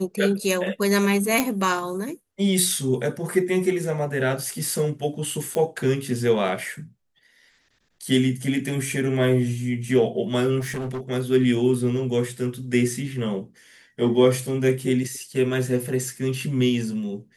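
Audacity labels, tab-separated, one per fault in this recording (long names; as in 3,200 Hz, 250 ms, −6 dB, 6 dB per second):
1.400000	1.400000	click −4 dBFS
5.550000	5.550000	click −13 dBFS
10.590000	11.010000	clipping −26 dBFS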